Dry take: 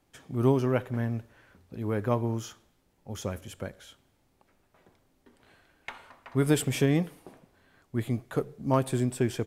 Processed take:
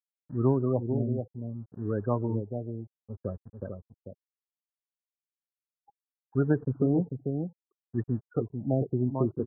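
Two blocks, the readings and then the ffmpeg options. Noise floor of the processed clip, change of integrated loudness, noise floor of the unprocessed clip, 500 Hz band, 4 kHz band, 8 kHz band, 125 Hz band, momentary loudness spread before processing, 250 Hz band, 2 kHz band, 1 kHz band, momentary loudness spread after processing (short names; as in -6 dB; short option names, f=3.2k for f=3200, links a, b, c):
under -85 dBFS, -1.0 dB, -70 dBFS, -1.0 dB, under -40 dB, under -40 dB, 0.0 dB, 18 LU, 0.0 dB, -11.0 dB, -5.0 dB, 15 LU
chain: -filter_complex "[0:a]afftfilt=real='re*gte(hypot(re,im),0.0501)':imag='im*gte(hypot(re,im),0.0501)':win_size=1024:overlap=0.75,acrossover=split=290|3000[a][b][c];[b]acompressor=threshold=-25dB:ratio=3[d];[a][d][c]amix=inputs=3:normalize=0,aeval=exprs='sgn(val(0))*max(abs(val(0))-0.00224,0)':c=same,aecho=1:1:444:0.473,afftfilt=real='re*lt(b*sr/1024,780*pow(1900/780,0.5+0.5*sin(2*PI*0.65*pts/sr)))':imag='im*lt(b*sr/1024,780*pow(1900/780,0.5+0.5*sin(2*PI*0.65*pts/sr)))':win_size=1024:overlap=0.75"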